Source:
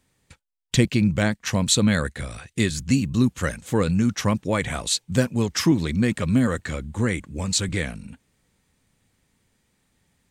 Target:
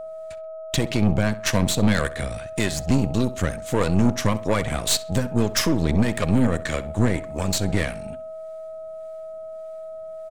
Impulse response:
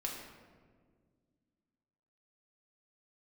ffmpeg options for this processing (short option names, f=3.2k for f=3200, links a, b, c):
-filter_complex "[0:a]alimiter=limit=-13.5dB:level=0:latency=1:release=193,acrossover=split=410[a][b];[a]aeval=exprs='val(0)*(1-0.5/2+0.5/2*cos(2*PI*1.7*n/s))':c=same[c];[b]aeval=exprs='val(0)*(1-0.5/2-0.5/2*cos(2*PI*1.7*n/s))':c=same[d];[c][d]amix=inputs=2:normalize=0,aeval=exprs='val(0)+0.0158*sin(2*PI*640*n/s)':c=same,aeval=exprs='0.251*(cos(1*acos(clip(val(0)/0.251,-1,1)))-cos(1*PI/2))+0.0355*(cos(6*acos(clip(val(0)/0.251,-1,1)))-cos(6*PI/2))':c=same,asplit=2[e][f];[f]adelay=65,lowpass=f=3.8k:p=1,volume=-16dB,asplit=2[g][h];[h]adelay=65,lowpass=f=3.8k:p=1,volume=0.38,asplit=2[i][j];[j]adelay=65,lowpass=f=3.8k:p=1,volume=0.38[k];[g][i][k]amix=inputs=3:normalize=0[l];[e][l]amix=inputs=2:normalize=0,volume=4dB"